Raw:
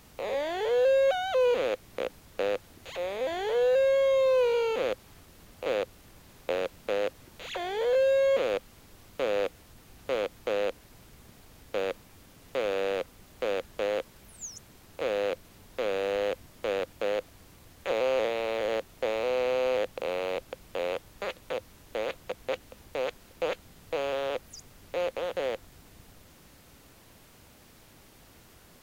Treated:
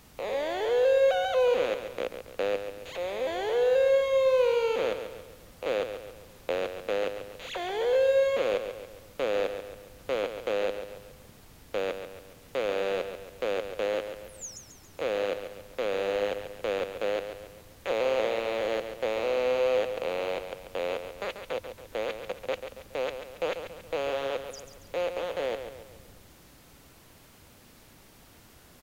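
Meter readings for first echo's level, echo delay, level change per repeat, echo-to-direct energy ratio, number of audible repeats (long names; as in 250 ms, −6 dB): −9.0 dB, 139 ms, −6.5 dB, −8.0 dB, 4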